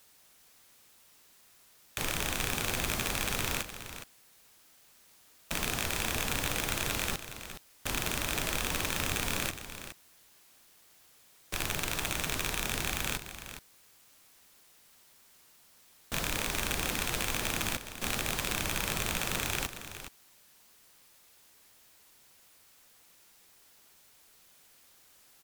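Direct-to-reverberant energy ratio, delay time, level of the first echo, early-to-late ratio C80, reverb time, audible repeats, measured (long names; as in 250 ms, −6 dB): no reverb audible, 416 ms, −11.0 dB, no reverb audible, no reverb audible, 1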